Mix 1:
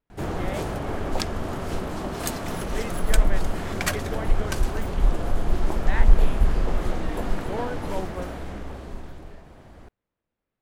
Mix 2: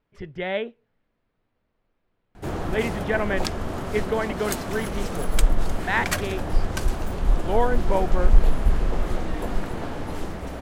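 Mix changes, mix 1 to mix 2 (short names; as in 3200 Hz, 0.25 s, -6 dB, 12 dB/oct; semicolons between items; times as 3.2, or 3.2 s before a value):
speech +9.0 dB; background: entry +2.25 s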